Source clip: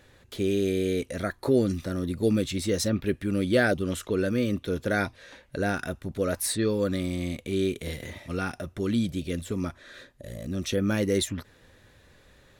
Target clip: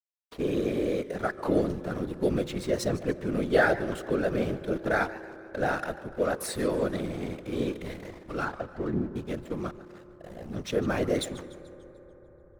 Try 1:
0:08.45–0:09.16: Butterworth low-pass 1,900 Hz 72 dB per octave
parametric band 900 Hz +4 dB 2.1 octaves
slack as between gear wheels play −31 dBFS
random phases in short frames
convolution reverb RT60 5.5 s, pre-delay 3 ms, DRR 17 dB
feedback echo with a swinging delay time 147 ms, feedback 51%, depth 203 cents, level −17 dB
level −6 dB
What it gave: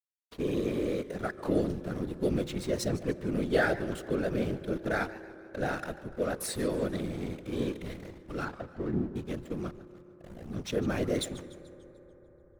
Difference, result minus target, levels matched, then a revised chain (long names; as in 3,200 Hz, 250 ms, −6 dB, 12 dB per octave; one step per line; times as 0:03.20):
1,000 Hz band −2.5 dB
0:08.45–0:09.16: Butterworth low-pass 1,900 Hz 72 dB per octave
parametric band 900 Hz +10.5 dB 2.1 octaves
slack as between gear wheels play −31 dBFS
random phases in short frames
convolution reverb RT60 5.5 s, pre-delay 3 ms, DRR 17 dB
feedback echo with a swinging delay time 147 ms, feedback 51%, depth 203 cents, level −17 dB
level −6 dB